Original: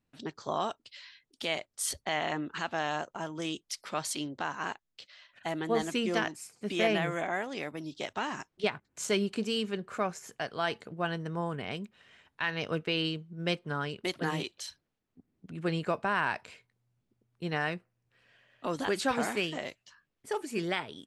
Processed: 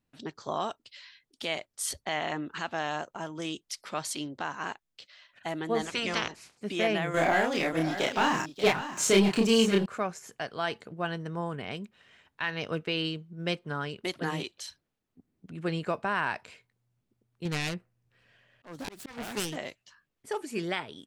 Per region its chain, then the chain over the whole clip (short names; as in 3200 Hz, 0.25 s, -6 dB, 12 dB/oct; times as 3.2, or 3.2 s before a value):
5.84–6.56 spectral limiter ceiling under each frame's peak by 21 dB + air absorption 70 m
7.14–9.86 sample leveller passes 2 + doubler 31 ms -2 dB + echo 0.583 s -11.5 dB
17.45–19.56 self-modulated delay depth 0.36 ms + low shelf 180 Hz +7 dB + auto swell 0.375 s
whole clip: dry